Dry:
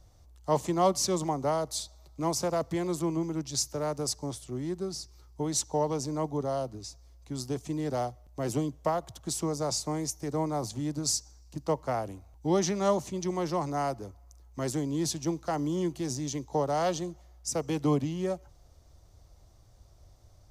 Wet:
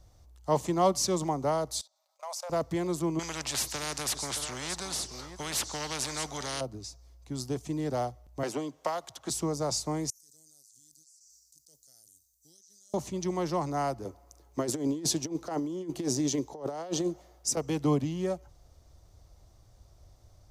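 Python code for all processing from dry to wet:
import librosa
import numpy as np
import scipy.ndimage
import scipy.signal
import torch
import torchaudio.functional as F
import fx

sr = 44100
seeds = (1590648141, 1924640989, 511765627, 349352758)

y = fx.chain(x, sr, fx.brickwall_highpass(low_hz=510.0),
    fx.level_steps(step_db=19), at=(1.81, 2.5))
y = fx.chain(y, sr, fx.lowpass(hz=8600.0, slope=12),
    fx.echo_single(ms=622, db=-21.0),
    fx.spectral_comp(ratio=4.0), at=(3.19, 6.61))
y = fx.chain(y, sr, fx.weighting(curve='A'),
    fx.band_squash(depth_pct=100), at=(8.43, 9.3))
y = fx.chain(y, sr, fx.cheby2_highpass(hz=2600.0, order=4, stop_db=70),
    fx.air_absorb(metres=180.0),
    fx.env_flatten(amount_pct=100), at=(10.1, 12.94))
y = fx.chain(y, sr, fx.highpass(hz=190.0, slope=6),
    fx.peak_eq(hz=390.0, db=7.0, octaves=1.4),
    fx.over_compress(threshold_db=-30.0, ratio=-0.5), at=(14.05, 17.57))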